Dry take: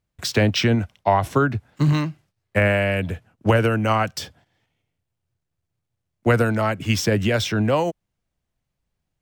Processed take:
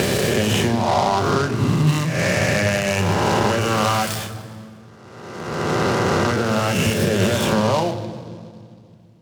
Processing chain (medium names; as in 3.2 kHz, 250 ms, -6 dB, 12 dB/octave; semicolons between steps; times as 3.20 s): reverse spectral sustain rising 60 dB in 1.66 s; 1.87–4.14 s: treble shelf 3.1 kHz +11.5 dB; compression 16:1, threshold -30 dBFS, peak gain reduction 22.5 dB; reverberation RT60 2.2 s, pre-delay 3 ms, DRR 4 dB; delay time shaken by noise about 3.5 kHz, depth 0.04 ms; trim +6 dB